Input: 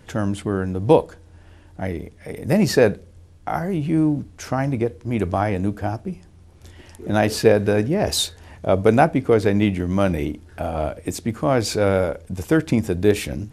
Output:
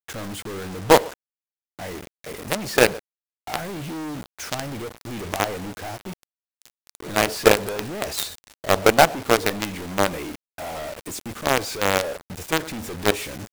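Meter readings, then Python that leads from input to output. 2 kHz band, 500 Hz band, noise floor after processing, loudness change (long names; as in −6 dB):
+3.5 dB, −3.5 dB, below −85 dBFS, −2.0 dB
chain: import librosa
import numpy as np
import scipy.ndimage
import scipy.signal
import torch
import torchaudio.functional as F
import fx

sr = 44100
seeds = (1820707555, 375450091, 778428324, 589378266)

y = fx.low_shelf(x, sr, hz=360.0, db=-11.0)
y = fx.echo_feedback(y, sr, ms=118, feedback_pct=18, wet_db=-23)
y = fx.quant_companded(y, sr, bits=2)
y = fx.dynamic_eq(y, sr, hz=600.0, q=0.76, threshold_db=-25.0, ratio=4.0, max_db=4)
y = y * 10.0 ** (-5.5 / 20.0)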